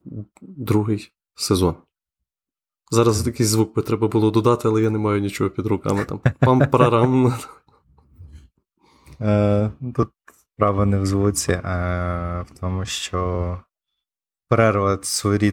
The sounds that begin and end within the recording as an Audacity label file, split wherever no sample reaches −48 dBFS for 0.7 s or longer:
2.880000	13.630000	sound